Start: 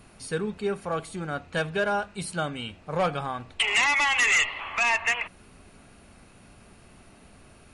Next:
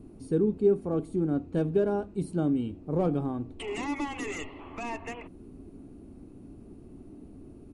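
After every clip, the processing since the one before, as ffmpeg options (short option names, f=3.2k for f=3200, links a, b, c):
-af "firequalizer=gain_entry='entry(200,0);entry(290,11);entry(550,-8);entry(1600,-23);entry(5200,-21);entry(9300,-18)':delay=0.05:min_phase=1,volume=3.5dB"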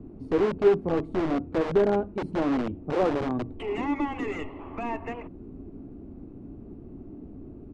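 -filter_complex "[0:a]acrossover=split=250|3200[a][b][c];[a]aeval=exprs='(mod(37.6*val(0)+1,2)-1)/37.6':c=same[d];[d][b][c]amix=inputs=3:normalize=0,adynamicsmooth=sensitivity=1.5:basefreq=1.9k,volume=5dB"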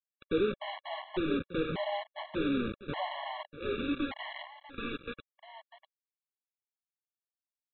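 -af "aresample=8000,acrusher=bits=4:mix=0:aa=0.000001,aresample=44100,aecho=1:1:647:0.224,afftfilt=real='re*gt(sin(2*PI*0.85*pts/sr)*(1-2*mod(floor(b*sr/1024/560),2)),0)':imag='im*gt(sin(2*PI*0.85*pts/sr)*(1-2*mod(floor(b*sr/1024/560),2)),0)':win_size=1024:overlap=0.75,volume=-5dB"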